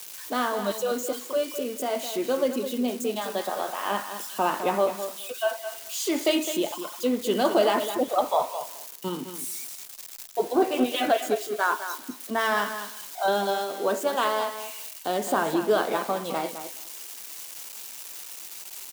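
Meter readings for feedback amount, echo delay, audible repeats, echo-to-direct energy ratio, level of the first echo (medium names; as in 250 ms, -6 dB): 15%, 210 ms, 2, -10.0 dB, -10.0 dB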